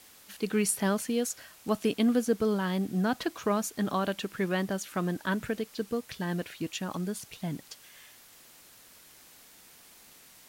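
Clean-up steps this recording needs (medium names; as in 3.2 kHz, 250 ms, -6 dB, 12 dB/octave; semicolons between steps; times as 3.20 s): de-click; noise reduction 20 dB, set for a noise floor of -55 dBFS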